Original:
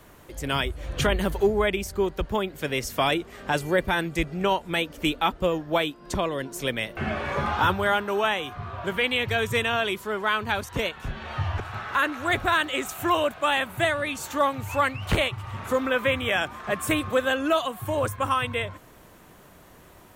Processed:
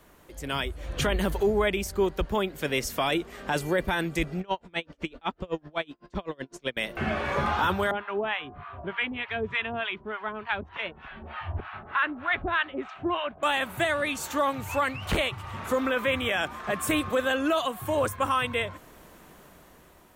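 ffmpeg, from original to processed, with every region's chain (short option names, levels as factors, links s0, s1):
-filter_complex "[0:a]asettb=1/sr,asplit=3[s0][s1][s2];[s0]atrim=end=4.404[s3];[s1]atrim=start=4.4:end=6.77,asetpts=PTS-STARTPTS,afade=t=in:d=0.004:c=qsin,afade=t=out:st=2.366:d=0.004:c=qsin,lowpass=5100,aeval=exprs='val(0)*pow(10,-33*(0.5-0.5*cos(2*PI*7.9*n/s))/20)':c=same[s4];[s2]atrim=start=6.766[s5];[s3][s4]acrossfade=d=0.004:c1=hsin:c2=qsin[s6];[s6][s5]acrossfade=d=0.004:c1=qsin:c2=hsin,asettb=1/sr,asplit=3[s7][s8][s9];[s7]atrim=end=7.914[s10];[s8]atrim=start=7.91:end=13.43,asetpts=PTS-STARTPTS,afade=t=in:d=0.004:c=qsin,afade=t=out:st=5.516:d=0.004:c=qsin,lowpass=f=3100:w=0.5412,lowpass=f=3100:w=1.3066,bandreject=f=500:w=6.2,acrossover=split=720[s11][s12];[s11]aeval=exprs='val(0)*(1-1/2+1/2*cos(2*PI*3.3*n/s))':c=same[s13];[s12]aeval=exprs='val(0)*(1-1/2-1/2*cos(2*PI*3.3*n/s))':c=same[s14];[s13][s14]amix=inputs=2:normalize=0[s15];[s9]atrim=start=13.426[s16];[s10][s15]acrossfade=d=0.004:c1=hsin:c2=qsin[s17];[s17][s16]acrossfade=d=0.004:c1=qsin:c2=hsin,equalizer=f=110:w=5.4:g=-12,dynaudnorm=f=190:g=9:m=1.88,alimiter=limit=0.282:level=0:latency=1:release=11,volume=0.562"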